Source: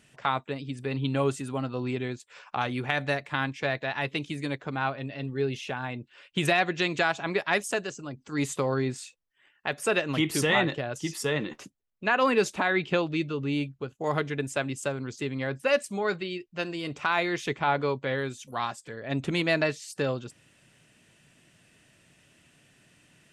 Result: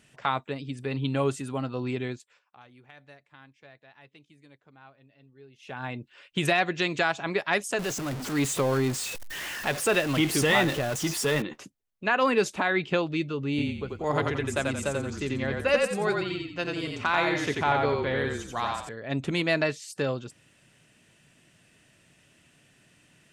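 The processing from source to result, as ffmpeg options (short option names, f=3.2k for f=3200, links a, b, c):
-filter_complex "[0:a]asettb=1/sr,asplit=3[a][b][c];[a]atrim=end=7.794[d];[b]atrim=start=7.79:end=11.42,asetpts=PTS-STARTPTS,afade=t=in:d=0.004:c=qsin,afade=t=out:st=3.626:d=0.004:c=qsin,aeval=exprs='val(0)+0.5*0.0335*sgn(val(0))':c=same[e];[c]atrim=start=11.416[f];[d][e]acrossfade=d=0.004:c1=hsin:c2=qsin[g];[g][f]acrossfade=d=0.004:c1=qsin:c2=hsin,asettb=1/sr,asplit=3[h][i][j];[h]atrim=end=13.494[k];[i]atrim=start=13.49:end=18.89,asetpts=PTS-STARTPTS,afade=t=in:d=0.004:c=qsin,afade=t=out:st=5.396:d=0.004:c=qsin,asplit=6[l][m][n][o][p][q];[m]adelay=88,afreqshift=-31,volume=-3dB[r];[n]adelay=176,afreqshift=-62,volume=-11.4dB[s];[o]adelay=264,afreqshift=-93,volume=-19.8dB[t];[p]adelay=352,afreqshift=-124,volume=-28.2dB[u];[q]adelay=440,afreqshift=-155,volume=-36.6dB[v];[l][r][s][t][u][v]amix=inputs=6:normalize=0,atrim=end_sample=238140[w];[j]atrim=start=18.886[x];[k][w]acrossfade=d=0.004:c1=hsin:c2=qsin[y];[y][x]acrossfade=d=0.004:c1=qsin:c2=hsin,asplit=3[z][aa][ab];[z]atrim=end=2.4,asetpts=PTS-STARTPTS,afade=t=out:st=2.11:d=0.29:silence=0.0668344[ac];[aa]atrim=start=2.4:end=5.58,asetpts=PTS-STARTPTS,volume=-23.5dB[ad];[ab]atrim=start=5.58,asetpts=PTS-STARTPTS,afade=t=in:d=0.29:silence=0.0668344[ae];[ac][ad][ae]concat=n=3:v=0:a=1"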